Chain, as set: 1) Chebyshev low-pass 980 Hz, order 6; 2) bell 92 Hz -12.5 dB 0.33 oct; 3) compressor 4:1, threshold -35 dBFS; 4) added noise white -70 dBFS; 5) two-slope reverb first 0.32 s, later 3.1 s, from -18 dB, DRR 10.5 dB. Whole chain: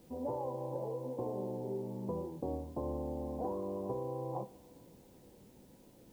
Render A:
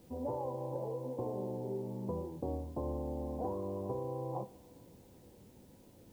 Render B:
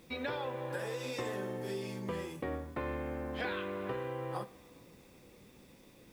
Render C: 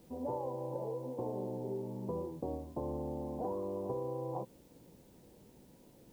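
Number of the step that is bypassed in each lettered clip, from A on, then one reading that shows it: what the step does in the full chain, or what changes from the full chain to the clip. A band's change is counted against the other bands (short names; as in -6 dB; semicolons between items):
2, 125 Hz band +2.0 dB; 1, 1 kHz band +1.5 dB; 5, momentary loudness spread change -17 LU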